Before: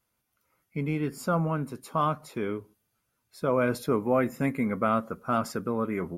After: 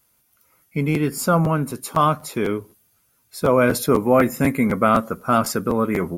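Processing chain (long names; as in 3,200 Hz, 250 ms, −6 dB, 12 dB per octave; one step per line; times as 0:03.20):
high-shelf EQ 5,600 Hz +10 dB
regular buffer underruns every 0.25 s, samples 512, repeat, from 0:00.69
level +8.5 dB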